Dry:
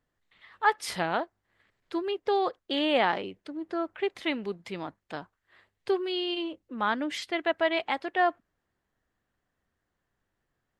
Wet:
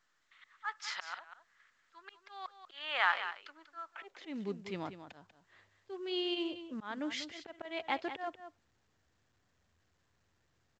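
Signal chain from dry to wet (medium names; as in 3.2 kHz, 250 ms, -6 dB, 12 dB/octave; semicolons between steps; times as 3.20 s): high-pass sweep 1.3 kHz -> 78 Hz, 3.84–4.68 s; slow attack 312 ms; delay 191 ms -11 dB; trim -4.5 dB; µ-law 128 kbps 16 kHz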